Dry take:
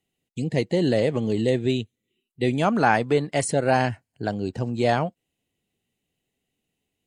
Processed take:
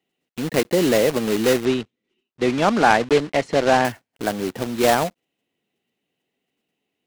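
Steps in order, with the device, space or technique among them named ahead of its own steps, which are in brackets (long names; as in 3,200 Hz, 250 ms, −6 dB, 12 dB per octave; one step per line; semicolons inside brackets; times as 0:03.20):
early digital voice recorder (band-pass filter 220–3,500 Hz; one scale factor per block 3 bits)
0:01.65–0:03.85: high-frequency loss of the air 91 metres
level +4.5 dB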